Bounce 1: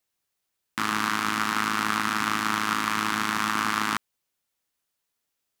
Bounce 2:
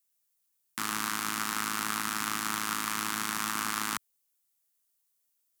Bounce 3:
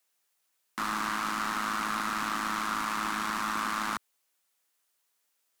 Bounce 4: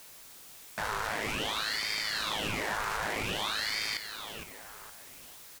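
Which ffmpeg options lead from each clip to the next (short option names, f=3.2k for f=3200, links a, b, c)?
-filter_complex "[0:a]highshelf=f=5.2k:g=9.5,acrossover=split=110|6600[a][b][c];[c]acontrast=48[d];[a][b][d]amix=inputs=3:normalize=0,volume=-8.5dB"
-filter_complex "[0:a]asplit=2[a][b];[b]highpass=f=720:p=1,volume=27dB,asoftclip=type=tanh:threshold=-10.5dB[c];[a][c]amix=inputs=2:normalize=0,lowpass=f=2.1k:p=1,volume=-6dB,volume=-7.5dB"
-af "aeval=exprs='val(0)+0.5*0.00794*sgn(val(0))':c=same,aecho=1:1:463|926|1389|1852:0.355|0.138|0.054|0.021,aeval=exprs='val(0)*sin(2*PI*1800*n/s+1800*0.9/0.52*sin(2*PI*0.52*n/s))':c=same"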